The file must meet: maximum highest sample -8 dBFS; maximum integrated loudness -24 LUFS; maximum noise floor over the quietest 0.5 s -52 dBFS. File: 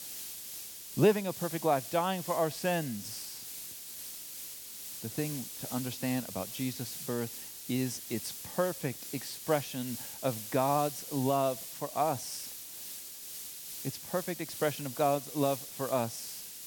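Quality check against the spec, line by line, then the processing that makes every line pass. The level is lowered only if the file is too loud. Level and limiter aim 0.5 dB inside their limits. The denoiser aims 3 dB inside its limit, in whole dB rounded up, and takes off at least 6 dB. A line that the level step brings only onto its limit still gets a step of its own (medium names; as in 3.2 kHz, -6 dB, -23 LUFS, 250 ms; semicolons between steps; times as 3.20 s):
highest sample -13.0 dBFS: pass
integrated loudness -33.5 LUFS: pass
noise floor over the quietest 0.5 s -44 dBFS: fail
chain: noise reduction 11 dB, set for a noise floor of -44 dBFS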